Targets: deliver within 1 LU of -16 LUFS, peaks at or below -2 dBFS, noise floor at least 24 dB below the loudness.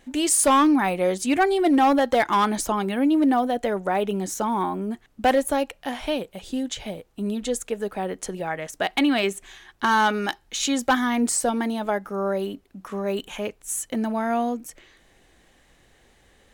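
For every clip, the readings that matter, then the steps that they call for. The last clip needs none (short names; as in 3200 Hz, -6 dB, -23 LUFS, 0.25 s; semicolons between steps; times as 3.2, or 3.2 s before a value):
clipped 0.7%; flat tops at -13.0 dBFS; loudness -23.5 LUFS; peak -13.0 dBFS; loudness target -16.0 LUFS
-> clip repair -13 dBFS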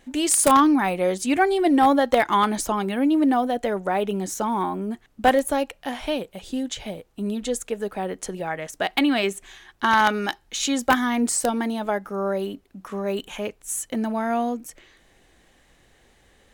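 clipped 0.0%; loudness -23.0 LUFS; peak -4.0 dBFS; loudness target -16.0 LUFS
-> gain +7 dB; limiter -2 dBFS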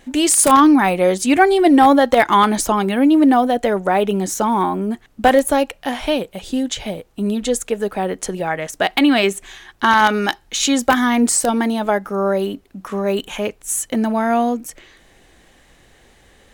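loudness -16.5 LUFS; peak -2.0 dBFS; noise floor -52 dBFS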